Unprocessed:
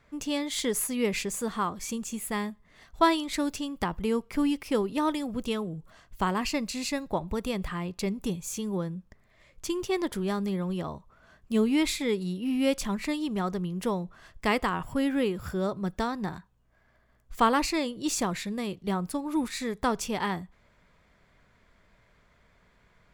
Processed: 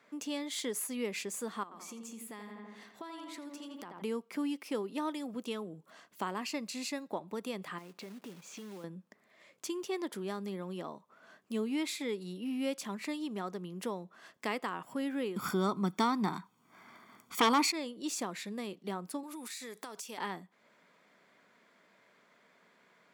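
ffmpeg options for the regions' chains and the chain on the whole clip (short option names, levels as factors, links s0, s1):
-filter_complex "[0:a]asettb=1/sr,asplit=3[s0][s1][s2];[s0]atrim=end=1.634[s3];[s1]atrim=start=1.63:end=4.02,asetpts=PTS-STARTPTS,afade=t=in:d=0.004:c=qsin,afade=t=out:st=2.386:d=0.004:c=qsin,asplit=2[s4][s5];[s5]adelay=83,lowpass=f=2700:p=1,volume=0.501,asplit=2[s6][s7];[s7]adelay=83,lowpass=f=2700:p=1,volume=0.53,asplit=2[s8][s9];[s9]adelay=83,lowpass=f=2700:p=1,volume=0.53,asplit=2[s10][s11];[s11]adelay=83,lowpass=f=2700:p=1,volume=0.53,asplit=2[s12][s13];[s13]adelay=83,lowpass=f=2700:p=1,volume=0.53,asplit=2[s14][s15];[s15]adelay=83,lowpass=f=2700:p=1,volume=0.53,asplit=2[s16][s17];[s17]adelay=83,lowpass=f=2700:p=1,volume=0.53[s18];[s4][s6][s8][s10][s12][s14][s16][s18]amix=inputs=8:normalize=0,atrim=end_sample=105399,acompressor=threshold=0.0112:ratio=8:attack=3.2:release=140:knee=1:detection=peak[s19];[s2]atrim=start=4.016[s20];[s3][s19]acrossfade=d=0.004:c1=hsin:c2=qsin[s21];[s21][s20]acrossfade=d=0.004:c1=qsin:c2=hsin,asettb=1/sr,asplit=3[s22][s23][s24];[s22]atrim=end=7.784[s25];[s23]atrim=start=7.78:end=8.84,asetpts=PTS-STARTPTS,afade=t=in:d=0.004:c=qsin,afade=t=out:st=1.056:d=0.004:c=qsin,lowpass=3200,acompressor=threshold=0.01:ratio=5:attack=3.2:release=140:knee=1:detection=peak,acrusher=bits=3:mode=log:mix=0:aa=0.000001[s26];[s24]atrim=start=8.836[s27];[s25][s26]acrossfade=d=0.004:c1=hsin:c2=qsin[s28];[s28][s27]acrossfade=d=0.004:c1=qsin:c2=hsin,asettb=1/sr,asplit=3[s29][s30][s31];[s29]atrim=end=15.364[s32];[s30]atrim=start=15.36:end=17.72,asetpts=PTS-STARTPTS,afade=t=in:d=0.004:c=qsin,afade=t=out:st=2.356:d=0.004:c=qsin,aecho=1:1:0.9:0.67,atrim=end_sample=104076,aeval=exprs='0.398*sin(PI/2*2.51*val(0)/0.398)':c=same[s33];[s31]atrim=start=17.716[s34];[s32][s33]acrossfade=d=0.004:c1=hsin:c2=qsin[s35];[s35][s34]acrossfade=d=0.004:c1=qsin:c2=hsin,asettb=1/sr,asplit=3[s36][s37][s38];[s36]atrim=end=19.234[s39];[s37]atrim=start=19.23:end=20.18,asetpts=PTS-STARTPTS,afade=t=in:d=0.004:c=qsin,afade=t=out:st=0.946:d=0.004:c=qsin,highpass=f=370:p=1,highshelf=f=4000:g=11.5,acompressor=threshold=0.0158:ratio=10:attack=3.2:release=140:knee=1:detection=peak[s40];[s38]atrim=start=20.176[s41];[s39][s40]acrossfade=d=0.004:c1=hsin:c2=qsin[s42];[s42][s41]acrossfade=d=0.004:c1=qsin:c2=hsin,highpass=f=210:w=0.5412,highpass=f=210:w=1.3066,acompressor=threshold=0.00447:ratio=1.5"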